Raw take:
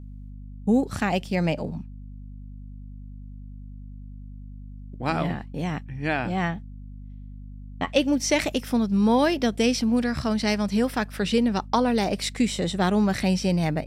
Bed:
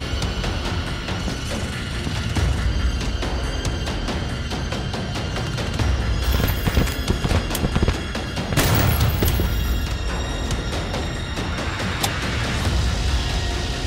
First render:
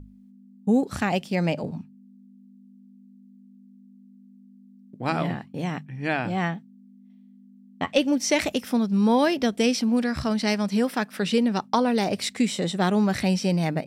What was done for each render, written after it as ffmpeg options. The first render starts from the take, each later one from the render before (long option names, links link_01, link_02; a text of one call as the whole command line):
ffmpeg -i in.wav -af "bandreject=frequency=50:width_type=h:width=6,bandreject=frequency=100:width_type=h:width=6,bandreject=frequency=150:width_type=h:width=6" out.wav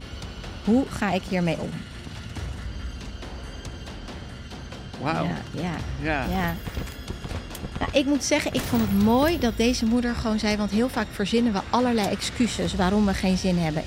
ffmpeg -i in.wav -i bed.wav -filter_complex "[1:a]volume=-12.5dB[link_01];[0:a][link_01]amix=inputs=2:normalize=0" out.wav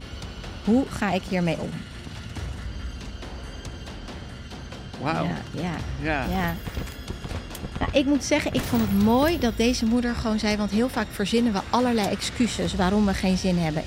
ffmpeg -i in.wav -filter_complex "[0:a]asettb=1/sr,asplit=3[link_01][link_02][link_03];[link_01]atrim=end=7.804[link_04];[link_02]atrim=start=7.8:end=8.63,asetpts=PTS-STARTPTS,afade=type=in:duration=0.004:curve=qsin,afade=type=out:start_time=0.826:duration=0.004:curve=qsin,bass=frequency=250:gain=3,treble=frequency=4000:gain=-4[link_05];[link_03]atrim=start=8.626[link_06];[link_04][link_05]acrossfade=duration=0.004:curve1=hsin:curve2=qsin[link_07];[link_07][link_06]acrossfade=duration=0.004:curve1=qsin:curve2=hsin,asettb=1/sr,asplit=3[link_08][link_09][link_10];[link_08]atrim=end=11.104[link_11];[link_09]atrim=start=11.1:end=11.98,asetpts=PTS-STARTPTS,afade=type=in:duration=0.004:curve=qsin,afade=type=out:start_time=0.876:duration=0.004:curve=qsin,highshelf=frequency=10000:gain=8.5[link_12];[link_10]atrim=start=11.976[link_13];[link_11][link_12]acrossfade=duration=0.004:curve1=hsin:curve2=qsin[link_14];[link_14][link_13]acrossfade=duration=0.004:curve1=qsin:curve2=hsin" out.wav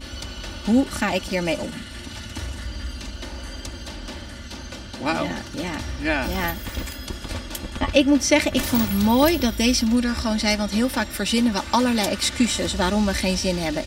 ffmpeg -i in.wav -af "highshelf=frequency=2800:gain=7,aecho=1:1:3.4:0.66" out.wav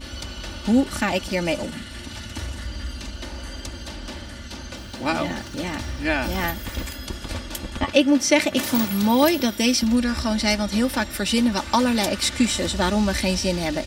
ffmpeg -i in.wav -filter_complex "[0:a]asettb=1/sr,asplit=3[link_01][link_02][link_03];[link_01]atrim=end=4.774[link_04];[link_02]atrim=start=4.77:end=6.57,asetpts=PTS-STARTPTS,afade=type=in:duration=0.004:curve=qsin,afade=type=out:start_time=1.796:duration=0.004:curve=qsin,aeval=exprs='val(0)*gte(abs(val(0)),0.00473)':channel_layout=same[link_05];[link_03]atrim=start=6.566[link_06];[link_04][link_05]acrossfade=duration=0.004:curve1=hsin:curve2=qsin[link_07];[link_07][link_06]acrossfade=duration=0.004:curve1=qsin:curve2=hsin,asettb=1/sr,asplit=3[link_08][link_09][link_10];[link_08]atrim=end=7.844[link_11];[link_09]atrim=start=7.84:end=9.83,asetpts=PTS-STARTPTS,afade=type=in:duration=0.004:curve=qsin,afade=type=out:start_time=1.986:duration=0.004:curve=qsin,highpass=150[link_12];[link_10]atrim=start=9.826[link_13];[link_11][link_12]acrossfade=duration=0.004:curve1=hsin:curve2=qsin[link_14];[link_14][link_13]acrossfade=duration=0.004:curve1=qsin:curve2=hsin" out.wav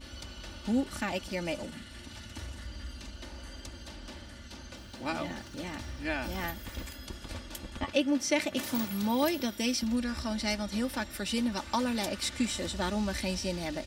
ffmpeg -i in.wav -af "volume=-10.5dB" out.wav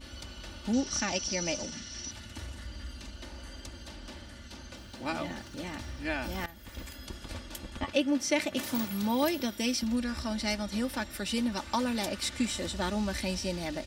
ffmpeg -i in.wav -filter_complex "[0:a]asettb=1/sr,asplit=3[link_01][link_02][link_03];[link_01]atrim=end=0.734[link_04];[link_02]atrim=start=0.73:end=2.11,asetpts=PTS-STARTPTS,afade=type=in:duration=0.004:curve=qsin,afade=type=out:start_time=1.376:duration=0.004:curve=qsin,lowpass=frequency=5800:width_type=q:width=13[link_05];[link_03]atrim=start=2.106[link_06];[link_04][link_05]acrossfade=duration=0.004:curve1=hsin:curve2=qsin[link_07];[link_07][link_06]acrossfade=duration=0.004:curve1=qsin:curve2=hsin,asplit=2[link_08][link_09];[link_08]atrim=end=6.46,asetpts=PTS-STARTPTS,afade=type=out:start_time=6.456:duration=0.004:curve=hsin:silence=0.16788[link_10];[link_09]atrim=start=6.46,asetpts=PTS-STARTPTS,afade=type=in:duration=0.69:curve=qsin:silence=0.16788[link_11];[link_10][link_11]concat=n=2:v=0:a=1" out.wav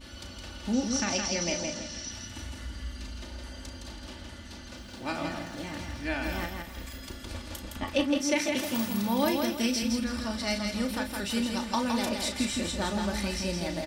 ffmpeg -i in.wav -filter_complex "[0:a]asplit=2[link_01][link_02];[link_02]adelay=35,volume=-8dB[link_03];[link_01][link_03]amix=inputs=2:normalize=0,aecho=1:1:164|328|492|656:0.596|0.197|0.0649|0.0214" out.wav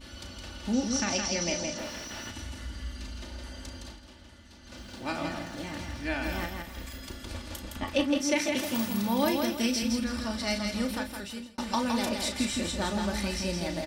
ffmpeg -i in.wav -filter_complex "[0:a]asplit=3[link_01][link_02][link_03];[link_01]afade=type=out:start_time=1.77:duration=0.02[link_04];[link_02]asplit=2[link_05][link_06];[link_06]highpass=frequency=720:poles=1,volume=31dB,asoftclip=type=tanh:threshold=-25.5dB[link_07];[link_05][link_07]amix=inputs=2:normalize=0,lowpass=frequency=1300:poles=1,volume=-6dB,afade=type=in:start_time=1.77:duration=0.02,afade=type=out:start_time=2.3:duration=0.02[link_08];[link_03]afade=type=in:start_time=2.3:duration=0.02[link_09];[link_04][link_08][link_09]amix=inputs=3:normalize=0,asplit=4[link_10][link_11][link_12][link_13];[link_10]atrim=end=4.02,asetpts=PTS-STARTPTS,afade=type=out:start_time=3.83:duration=0.19:silence=0.375837[link_14];[link_11]atrim=start=4.02:end=4.61,asetpts=PTS-STARTPTS,volume=-8.5dB[link_15];[link_12]atrim=start=4.61:end=11.58,asetpts=PTS-STARTPTS,afade=type=in:duration=0.19:silence=0.375837,afade=type=out:start_time=6.29:duration=0.68[link_16];[link_13]atrim=start=11.58,asetpts=PTS-STARTPTS,afade=type=in:duration=0.004:curve=hsin[link_17];[link_14][link_15][link_16][link_17]concat=n=4:v=0:a=1" out.wav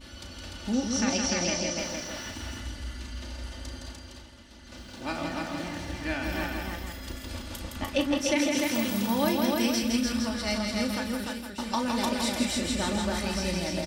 ffmpeg -i in.wav -af "aecho=1:1:297:0.708" out.wav